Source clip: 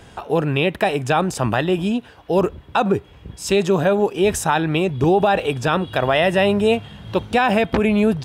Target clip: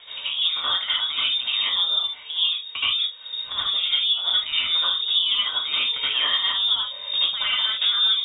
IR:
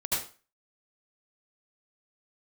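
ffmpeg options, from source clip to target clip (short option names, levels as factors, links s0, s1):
-filter_complex "[0:a]acompressor=threshold=0.0251:ratio=3[s0];[1:a]atrim=start_sample=2205,afade=t=out:st=0.21:d=0.01,atrim=end_sample=9702[s1];[s0][s1]afir=irnorm=-1:irlink=0,lowpass=f=3200:t=q:w=0.5098,lowpass=f=3200:t=q:w=0.6013,lowpass=f=3200:t=q:w=0.9,lowpass=f=3200:t=q:w=2.563,afreqshift=-3800"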